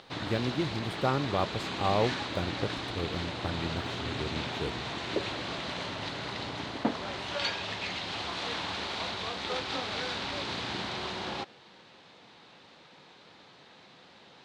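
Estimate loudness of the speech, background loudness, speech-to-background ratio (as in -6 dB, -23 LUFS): -34.0 LUFS, -34.5 LUFS, 0.5 dB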